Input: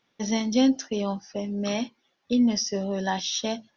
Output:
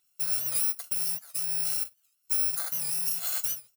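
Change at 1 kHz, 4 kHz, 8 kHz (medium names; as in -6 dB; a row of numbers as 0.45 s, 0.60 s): -15.5 dB, -7.0 dB, no reading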